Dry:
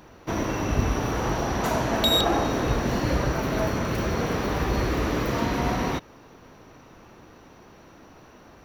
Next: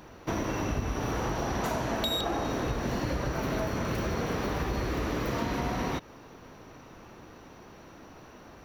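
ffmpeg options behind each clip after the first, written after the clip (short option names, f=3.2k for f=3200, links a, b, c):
-af "acompressor=threshold=-27dB:ratio=6"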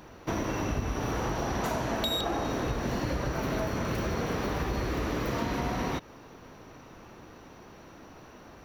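-af anull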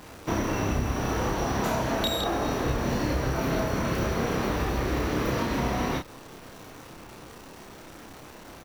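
-filter_complex "[0:a]acrusher=bits=9:dc=4:mix=0:aa=0.000001,asplit=2[a][b];[b]adelay=30,volume=-3.5dB[c];[a][c]amix=inputs=2:normalize=0,volume=2dB"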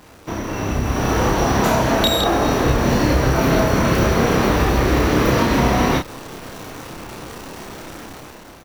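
-af "dynaudnorm=f=240:g=7:m=11.5dB"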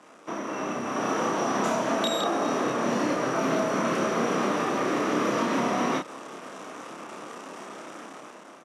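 -filter_complex "[0:a]acrossover=split=320|3000[a][b][c];[b]acompressor=threshold=-20dB:ratio=6[d];[a][d][c]amix=inputs=3:normalize=0,highpass=f=200:w=0.5412,highpass=f=200:w=1.3066,equalizer=f=620:t=q:w=4:g=4,equalizer=f=1.2k:t=q:w=4:g=7,equalizer=f=4.3k:t=q:w=4:g=-8,lowpass=f=9.4k:w=0.5412,lowpass=f=9.4k:w=1.3066,volume=-7dB"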